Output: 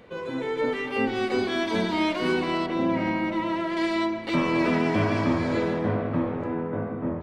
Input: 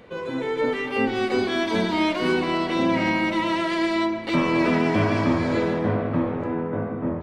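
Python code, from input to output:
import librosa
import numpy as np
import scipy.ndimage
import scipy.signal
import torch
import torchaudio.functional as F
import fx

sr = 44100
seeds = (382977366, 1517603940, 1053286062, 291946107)

y = fx.high_shelf(x, sr, hz=2500.0, db=-11.5, at=(2.66, 3.77))
y = y * 10.0 ** (-2.5 / 20.0)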